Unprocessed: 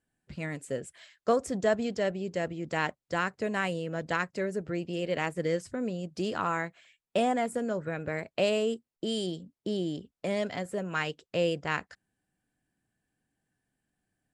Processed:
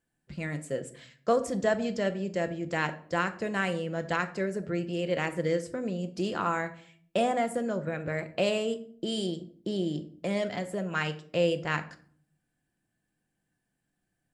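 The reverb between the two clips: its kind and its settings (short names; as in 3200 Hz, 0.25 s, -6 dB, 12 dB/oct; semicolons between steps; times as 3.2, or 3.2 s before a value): shoebox room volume 670 m³, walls furnished, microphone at 0.82 m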